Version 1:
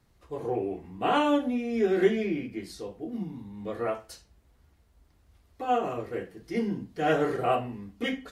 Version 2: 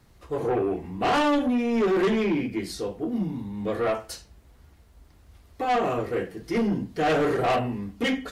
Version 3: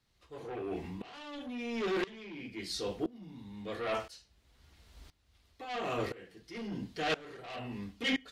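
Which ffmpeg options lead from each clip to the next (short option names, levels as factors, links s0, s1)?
-af "asoftclip=type=tanh:threshold=0.0422,volume=2.66"
-af "equalizer=f=3800:t=o:w=2.1:g=12,areverse,acompressor=threshold=0.0398:ratio=6,areverse,aeval=exprs='val(0)*pow(10,-22*if(lt(mod(-0.98*n/s,1),2*abs(-0.98)/1000),1-mod(-0.98*n/s,1)/(2*abs(-0.98)/1000),(mod(-0.98*n/s,1)-2*abs(-0.98)/1000)/(1-2*abs(-0.98)/1000))/20)':c=same"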